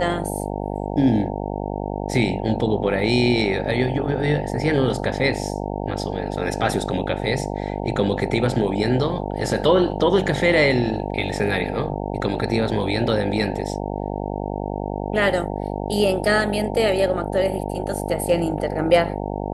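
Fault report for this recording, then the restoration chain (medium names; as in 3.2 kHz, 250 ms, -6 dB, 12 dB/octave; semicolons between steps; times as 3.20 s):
buzz 50 Hz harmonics 18 -27 dBFS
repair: de-hum 50 Hz, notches 18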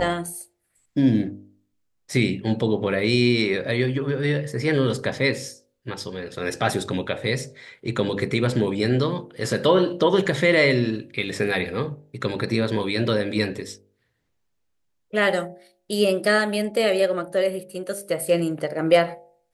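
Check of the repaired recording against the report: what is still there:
nothing left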